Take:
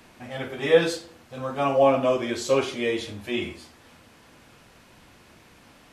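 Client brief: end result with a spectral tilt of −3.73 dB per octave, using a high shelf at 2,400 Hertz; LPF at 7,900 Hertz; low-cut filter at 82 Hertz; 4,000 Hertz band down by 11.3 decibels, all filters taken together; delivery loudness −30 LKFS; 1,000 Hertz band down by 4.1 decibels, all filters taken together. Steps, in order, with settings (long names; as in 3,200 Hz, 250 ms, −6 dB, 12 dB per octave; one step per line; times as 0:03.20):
high-pass filter 82 Hz
low-pass filter 7,900 Hz
parametric band 1,000 Hz −4 dB
high-shelf EQ 2,400 Hz −8.5 dB
parametric band 4,000 Hz −7 dB
level −4 dB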